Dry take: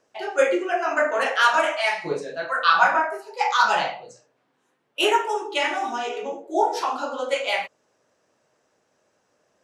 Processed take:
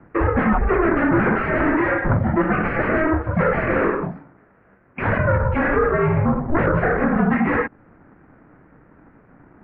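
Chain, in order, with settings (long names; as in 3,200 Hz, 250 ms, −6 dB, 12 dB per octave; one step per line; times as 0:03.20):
lower of the sound and its delayed copy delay 0.38 ms
sine wavefolder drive 18 dB, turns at −4.5 dBFS
downward compressor 4 to 1, threshold −15 dBFS, peak gain reduction 7.5 dB
single-sideband voice off tune −320 Hz 350–2,000 Hz
0:04.02–0:05.02: low-shelf EQ 78 Hz −10.5 dB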